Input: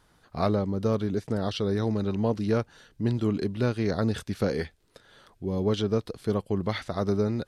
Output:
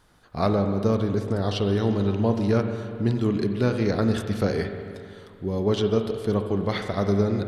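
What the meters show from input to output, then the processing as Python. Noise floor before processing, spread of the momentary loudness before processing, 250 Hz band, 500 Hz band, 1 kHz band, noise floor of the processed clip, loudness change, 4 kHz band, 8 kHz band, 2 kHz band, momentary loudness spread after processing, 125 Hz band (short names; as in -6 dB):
-64 dBFS, 5 LU, +3.5 dB, +3.5 dB, +3.5 dB, -49 dBFS, +3.5 dB, +3.0 dB, +2.5 dB, +3.5 dB, 8 LU, +4.0 dB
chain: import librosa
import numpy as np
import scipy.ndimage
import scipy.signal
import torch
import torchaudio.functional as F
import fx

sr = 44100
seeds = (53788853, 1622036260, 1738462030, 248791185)

y = fx.rev_spring(x, sr, rt60_s=2.3, pass_ms=(40, 44), chirp_ms=50, drr_db=5.5)
y = F.gain(torch.from_numpy(y), 2.5).numpy()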